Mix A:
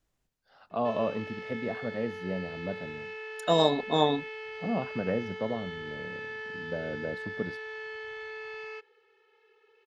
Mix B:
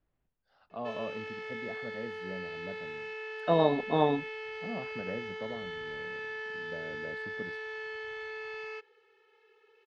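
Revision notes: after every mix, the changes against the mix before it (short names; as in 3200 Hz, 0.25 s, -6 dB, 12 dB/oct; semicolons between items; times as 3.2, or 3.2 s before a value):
first voice -9.0 dB; second voice: add air absorption 440 m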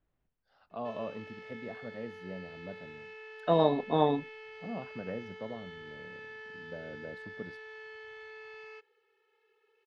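background -7.5 dB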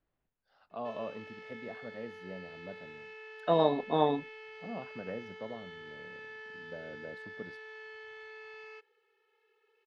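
master: add low shelf 210 Hz -6 dB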